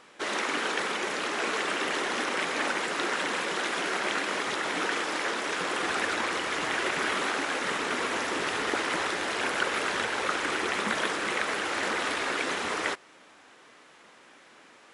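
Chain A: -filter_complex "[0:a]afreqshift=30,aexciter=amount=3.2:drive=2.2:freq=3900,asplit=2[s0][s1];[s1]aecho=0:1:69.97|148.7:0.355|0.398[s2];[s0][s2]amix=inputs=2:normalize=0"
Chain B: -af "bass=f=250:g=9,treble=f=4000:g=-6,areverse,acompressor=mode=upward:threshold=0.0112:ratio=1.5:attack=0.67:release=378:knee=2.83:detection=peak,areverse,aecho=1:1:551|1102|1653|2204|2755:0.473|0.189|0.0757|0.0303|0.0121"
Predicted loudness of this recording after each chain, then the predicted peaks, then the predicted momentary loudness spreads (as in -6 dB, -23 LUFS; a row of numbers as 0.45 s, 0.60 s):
-26.0 LUFS, -28.0 LUFS; -10.0 dBFS, -13.0 dBFS; 2 LU, 6 LU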